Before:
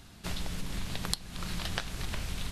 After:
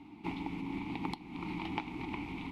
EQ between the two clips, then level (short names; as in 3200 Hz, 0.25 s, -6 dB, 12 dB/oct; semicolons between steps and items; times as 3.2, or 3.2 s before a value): vowel filter u; bell 6600 Hz -10.5 dB 1.9 oct; +16.0 dB